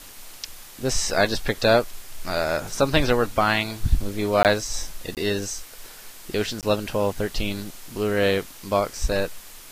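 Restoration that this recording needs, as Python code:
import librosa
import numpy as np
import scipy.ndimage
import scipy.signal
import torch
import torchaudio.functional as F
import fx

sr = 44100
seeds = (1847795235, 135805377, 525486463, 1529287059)

y = fx.fix_interpolate(x, sr, at_s=(4.43, 5.15, 6.61), length_ms=18.0)
y = fx.noise_reduce(y, sr, print_start_s=5.66, print_end_s=6.16, reduce_db=25.0)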